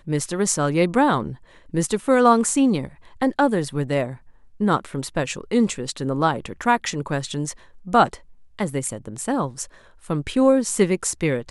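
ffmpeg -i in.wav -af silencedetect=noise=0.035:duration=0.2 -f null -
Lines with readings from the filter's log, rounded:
silence_start: 1.33
silence_end: 1.74 | silence_duration: 0.41
silence_start: 2.88
silence_end: 3.21 | silence_duration: 0.33
silence_start: 4.14
silence_end: 4.60 | silence_duration: 0.47
silence_start: 7.52
silence_end: 7.87 | silence_duration: 0.36
silence_start: 8.15
silence_end: 8.59 | silence_duration: 0.44
silence_start: 9.64
silence_end: 10.10 | silence_duration: 0.46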